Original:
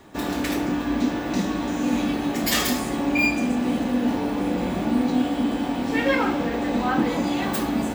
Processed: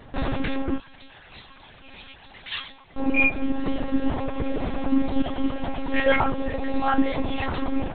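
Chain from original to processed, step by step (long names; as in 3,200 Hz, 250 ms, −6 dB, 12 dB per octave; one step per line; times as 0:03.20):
reverb reduction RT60 1.6 s
0:00.78–0:02.97: first difference
one-pitch LPC vocoder at 8 kHz 270 Hz
level +3.5 dB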